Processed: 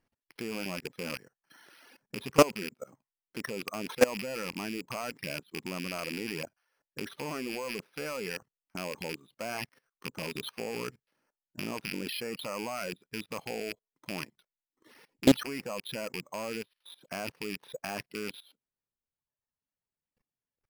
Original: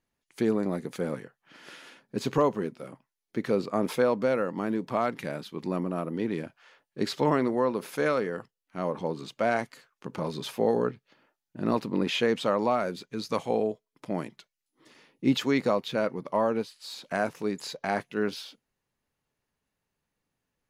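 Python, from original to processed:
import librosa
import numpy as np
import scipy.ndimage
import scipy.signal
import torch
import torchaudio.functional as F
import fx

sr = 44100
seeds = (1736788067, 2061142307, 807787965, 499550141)

y = fx.rattle_buzz(x, sr, strikes_db=-37.0, level_db=-18.0)
y = fx.dereverb_blind(y, sr, rt60_s=1.2)
y = fx.level_steps(y, sr, step_db=21)
y = np.repeat(scipy.signal.resample_poly(y, 1, 6), 6)[:len(y)]
y = fx.doppler_dist(y, sr, depth_ms=0.57)
y = y * librosa.db_to_amplitude(6.0)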